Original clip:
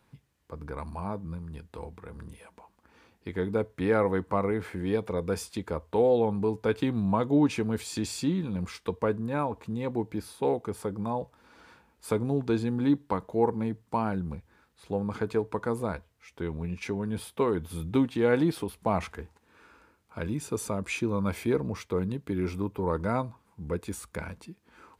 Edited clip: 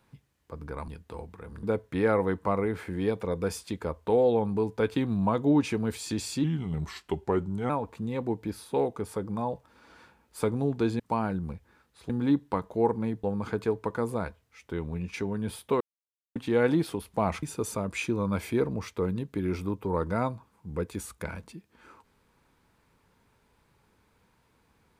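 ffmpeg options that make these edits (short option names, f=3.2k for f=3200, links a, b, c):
-filter_complex "[0:a]asplit=11[a][b][c][d][e][f][g][h][i][j][k];[a]atrim=end=0.882[l];[b]atrim=start=1.518:end=2.272[m];[c]atrim=start=3.488:end=8.304[n];[d]atrim=start=8.3:end=9.38,asetpts=PTS-STARTPTS,asetrate=37926,aresample=44100,atrim=end_sample=55381,asetpts=PTS-STARTPTS[o];[e]atrim=start=9.376:end=12.682[p];[f]atrim=start=13.818:end=14.922[q];[g]atrim=start=12.678:end=13.822[r];[h]atrim=start=14.918:end=17.49,asetpts=PTS-STARTPTS,afade=t=out:st=2.568:d=0.004:c=hsin[s];[i]atrim=start=17.49:end=18.04,asetpts=PTS-STARTPTS,volume=0[t];[j]atrim=start=18.04:end=19.112,asetpts=PTS-STARTPTS,afade=t=in:d=0.004:c=hsin[u];[k]atrim=start=20.358[v];[l][m]acrossfade=d=0.004:c1=hsin:c2=hsin[w];[w][n]acrossfade=d=0.004:c1=hsin:c2=hsin[x];[x][o]acrossfade=d=0.004:c1=hsin:c2=hsin[y];[y][p]acrossfade=d=0.004:c1=hsin:c2=hsin[z];[z][q]acrossfade=d=0.004:c1=hsin:c2=hsin[aa];[aa][r]acrossfade=d=0.004:c1=hsin:c2=hsin[ab];[s][t][u]concat=n=3:v=0:a=1[ac];[ab][ac]acrossfade=d=0.004:c1=hsin:c2=hsin[ad];[ad][v]acrossfade=d=0.004:c1=hsin:c2=hsin"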